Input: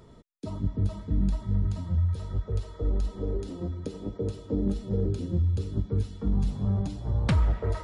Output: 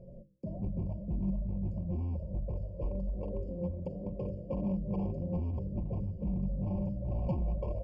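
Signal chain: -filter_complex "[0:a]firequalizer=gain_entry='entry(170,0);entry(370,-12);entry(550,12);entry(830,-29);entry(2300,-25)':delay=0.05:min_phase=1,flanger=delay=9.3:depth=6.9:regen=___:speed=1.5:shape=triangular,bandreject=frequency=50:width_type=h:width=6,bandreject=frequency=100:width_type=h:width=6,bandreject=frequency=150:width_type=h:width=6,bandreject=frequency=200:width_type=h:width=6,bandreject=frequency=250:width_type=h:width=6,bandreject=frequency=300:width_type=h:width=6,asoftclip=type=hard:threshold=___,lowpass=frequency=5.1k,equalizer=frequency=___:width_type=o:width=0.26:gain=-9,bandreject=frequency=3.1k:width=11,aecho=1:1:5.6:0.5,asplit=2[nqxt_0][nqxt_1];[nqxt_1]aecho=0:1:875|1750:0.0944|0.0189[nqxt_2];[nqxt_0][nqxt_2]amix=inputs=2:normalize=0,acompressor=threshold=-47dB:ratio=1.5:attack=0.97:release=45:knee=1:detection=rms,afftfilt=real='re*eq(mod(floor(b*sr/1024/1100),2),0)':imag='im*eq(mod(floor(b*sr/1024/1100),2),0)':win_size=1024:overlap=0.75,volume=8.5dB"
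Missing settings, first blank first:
85, -31dB, 470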